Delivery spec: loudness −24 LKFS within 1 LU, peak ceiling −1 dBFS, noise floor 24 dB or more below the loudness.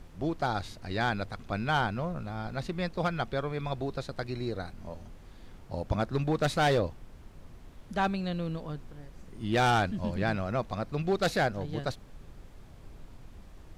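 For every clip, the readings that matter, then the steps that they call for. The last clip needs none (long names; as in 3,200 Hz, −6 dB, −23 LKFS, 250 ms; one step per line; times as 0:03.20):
background noise floor −51 dBFS; target noise floor −56 dBFS; integrated loudness −31.5 LKFS; sample peak −17.5 dBFS; target loudness −24.0 LKFS
→ noise reduction from a noise print 6 dB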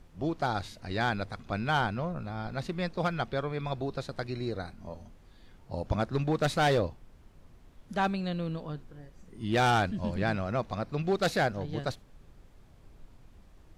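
background noise floor −56 dBFS; integrated loudness −31.5 LKFS; sample peak −17.5 dBFS; target loudness −24.0 LKFS
→ level +7.5 dB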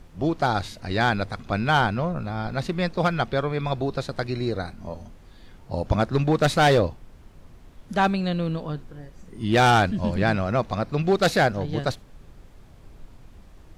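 integrated loudness −24.0 LKFS; sample peak −10.0 dBFS; background noise floor −49 dBFS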